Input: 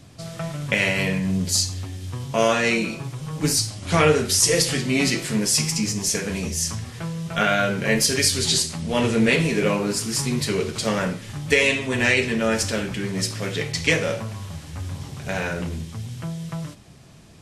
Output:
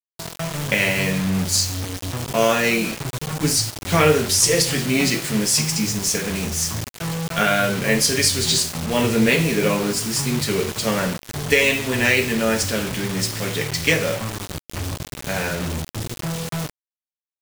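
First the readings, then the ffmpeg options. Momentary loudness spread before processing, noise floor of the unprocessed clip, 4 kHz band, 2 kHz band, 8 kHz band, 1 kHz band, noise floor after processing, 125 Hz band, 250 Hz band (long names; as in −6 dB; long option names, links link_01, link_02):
14 LU, −42 dBFS, +2.0 dB, +1.5 dB, +2.0 dB, +2.0 dB, below −85 dBFS, +1.5 dB, +1.5 dB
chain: -af "acrusher=bits=4:mix=0:aa=0.000001,volume=1.5dB"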